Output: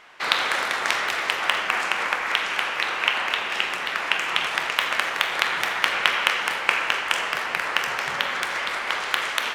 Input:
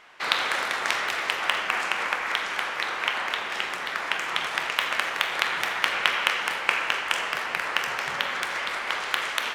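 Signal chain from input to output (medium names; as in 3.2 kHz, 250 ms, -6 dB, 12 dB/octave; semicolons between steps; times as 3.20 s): 2.32–4.55 s: peaking EQ 2.7 kHz +5.5 dB 0.32 oct; trim +2.5 dB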